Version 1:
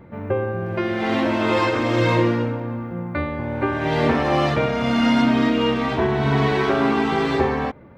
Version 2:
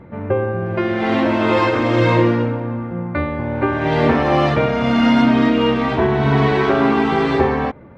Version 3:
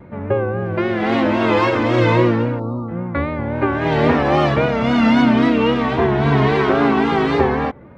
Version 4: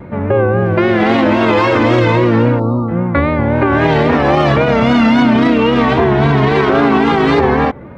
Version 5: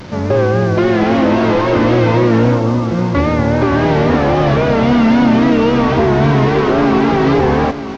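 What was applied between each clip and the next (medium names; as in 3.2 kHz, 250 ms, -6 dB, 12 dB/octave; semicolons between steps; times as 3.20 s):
low-pass 3.4 kHz 6 dB/octave; trim +4 dB
vibrato 3.7 Hz 71 cents; spectral selection erased 2.60–2.89 s, 1.4–3.7 kHz
peak limiter -12 dBFS, peak gain reduction 10 dB; trim +9 dB
one-bit delta coder 32 kbps, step -29 dBFS; delay 934 ms -13 dB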